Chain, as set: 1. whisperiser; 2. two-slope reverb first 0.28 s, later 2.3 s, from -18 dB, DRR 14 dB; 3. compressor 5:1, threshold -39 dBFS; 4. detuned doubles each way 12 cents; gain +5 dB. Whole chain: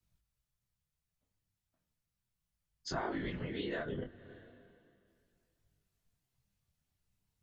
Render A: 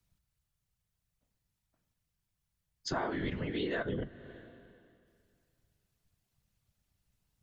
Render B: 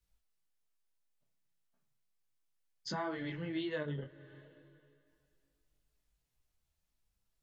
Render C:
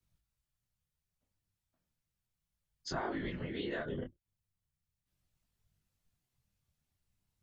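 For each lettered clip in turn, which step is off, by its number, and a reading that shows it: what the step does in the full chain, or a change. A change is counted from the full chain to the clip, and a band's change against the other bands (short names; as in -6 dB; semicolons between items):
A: 4, loudness change +3.5 LU; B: 1, 125 Hz band +2.0 dB; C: 2, momentary loudness spread change -10 LU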